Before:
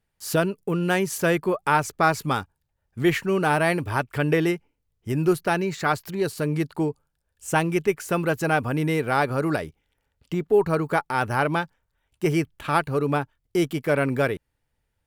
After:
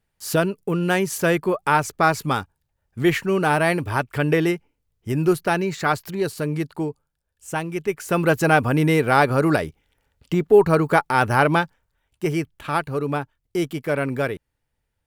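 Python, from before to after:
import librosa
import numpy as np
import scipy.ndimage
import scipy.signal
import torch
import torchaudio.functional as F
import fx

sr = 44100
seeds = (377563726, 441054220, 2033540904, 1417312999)

y = fx.gain(x, sr, db=fx.line((6.04, 2.0), (7.71, -5.0), (8.28, 5.5), (11.58, 5.5), (12.32, -1.0)))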